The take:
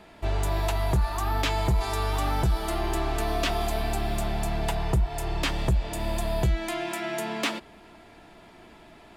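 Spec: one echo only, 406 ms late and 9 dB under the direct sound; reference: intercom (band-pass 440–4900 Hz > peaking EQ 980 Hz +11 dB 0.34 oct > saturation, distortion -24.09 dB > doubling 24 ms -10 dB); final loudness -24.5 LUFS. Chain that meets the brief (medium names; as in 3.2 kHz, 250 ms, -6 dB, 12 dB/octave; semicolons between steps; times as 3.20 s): band-pass 440–4900 Hz; peaking EQ 980 Hz +11 dB 0.34 oct; delay 406 ms -9 dB; saturation -16.5 dBFS; doubling 24 ms -10 dB; trim +4.5 dB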